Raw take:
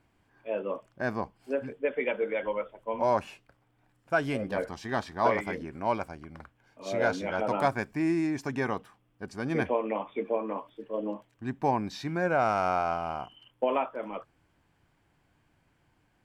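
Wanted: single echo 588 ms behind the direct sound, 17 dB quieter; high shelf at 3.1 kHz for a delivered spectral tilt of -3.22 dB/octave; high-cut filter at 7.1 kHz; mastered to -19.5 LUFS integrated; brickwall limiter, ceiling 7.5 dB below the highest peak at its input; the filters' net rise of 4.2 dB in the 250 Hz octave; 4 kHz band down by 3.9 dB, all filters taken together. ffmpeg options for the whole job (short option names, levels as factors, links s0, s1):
-af "lowpass=7100,equalizer=f=250:t=o:g=5.5,highshelf=f=3100:g=5,equalizer=f=4000:t=o:g=-9,alimiter=limit=0.133:level=0:latency=1,aecho=1:1:588:0.141,volume=3.55"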